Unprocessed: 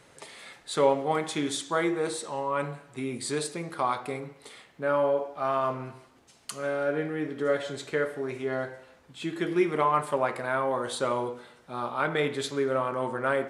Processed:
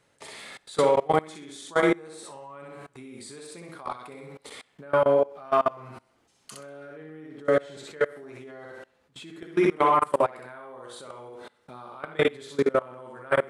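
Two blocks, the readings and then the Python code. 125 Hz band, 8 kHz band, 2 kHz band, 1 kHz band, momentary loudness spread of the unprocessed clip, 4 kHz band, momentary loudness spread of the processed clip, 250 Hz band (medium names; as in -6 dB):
-2.0 dB, -6.5 dB, -0.5 dB, +1.0 dB, 14 LU, -3.0 dB, 22 LU, 0.0 dB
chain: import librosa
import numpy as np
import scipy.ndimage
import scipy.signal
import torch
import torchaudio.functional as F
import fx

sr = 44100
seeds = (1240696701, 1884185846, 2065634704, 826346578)

y = fx.echo_feedback(x, sr, ms=64, feedback_pct=33, wet_db=-3)
y = fx.level_steps(y, sr, step_db=24)
y = y * 10.0 ** (5.0 / 20.0)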